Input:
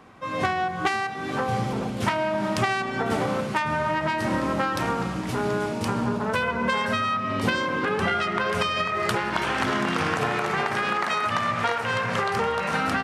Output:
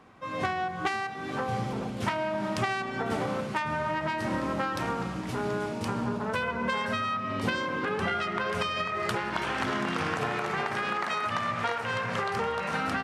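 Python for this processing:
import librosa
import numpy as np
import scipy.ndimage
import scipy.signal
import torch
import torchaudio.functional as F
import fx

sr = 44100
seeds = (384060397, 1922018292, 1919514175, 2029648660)

y = fx.high_shelf(x, sr, hz=9800.0, db=-4.0)
y = y * librosa.db_to_amplitude(-5.0)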